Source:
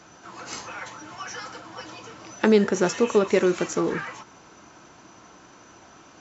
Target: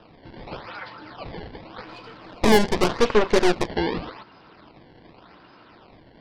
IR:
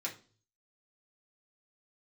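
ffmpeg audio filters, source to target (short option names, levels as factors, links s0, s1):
-filter_complex "[0:a]acrusher=samples=20:mix=1:aa=0.000001:lfo=1:lforange=32:lforate=0.86,aresample=11025,aresample=44100,asettb=1/sr,asplit=3[s0][s1][s2];[s0]atrim=end=1.854[s3];[s1]atrim=start=1.85:end=3.68,asetpts=PTS-STARTPTS,afade=t=in:d=0.004:c=qsin,afade=t=out:st=1.826:d=0.004:c=qsin,aeval=exprs='0.473*(cos(1*acos(clip(val(0)/0.473,-1,1)))-cos(1*PI/2))+0.0944*(cos(8*acos(clip(val(0)/0.473,-1,1)))-cos(8*PI/2))':c=same[s4];[s2]atrim=start=3.676[s5];[s3][s4]acrossfade=d=0.004:c1=hsin:c2=qsin[s6];[s6][s5]acrossfade=d=0.004:c1=qsin:c2=hsin"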